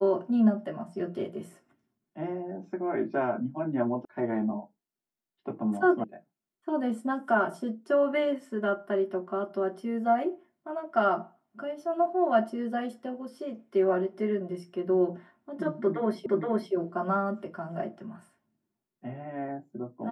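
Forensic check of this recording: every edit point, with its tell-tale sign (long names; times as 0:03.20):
0:04.05: cut off before it has died away
0:06.04: cut off before it has died away
0:16.26: the same again, the last 0.47 s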